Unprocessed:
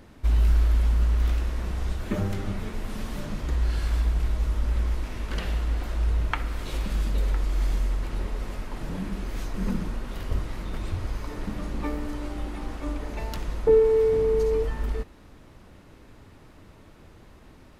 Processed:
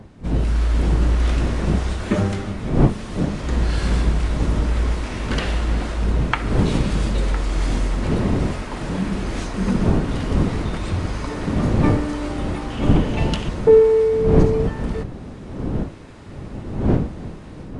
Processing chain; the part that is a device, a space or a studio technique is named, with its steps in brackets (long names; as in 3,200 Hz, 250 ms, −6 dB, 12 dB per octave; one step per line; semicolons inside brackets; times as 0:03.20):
high-pass filter 82 Hz 6 dB per octave
0:12.70–0:13.49: parametric band 3,000 Hz +11.5 dB 0.38 octaves
smartphone video outdoors (wind on the microphone 230 Hz −30 dBFS; automatic gain control gain up to 11 dB; level −1 dB; AAC 96 kbit/s 22,050 Hz)